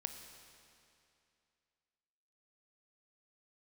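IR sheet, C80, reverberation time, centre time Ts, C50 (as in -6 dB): 8.0 dB, 2.6 s, 40 ms, 7.5 dB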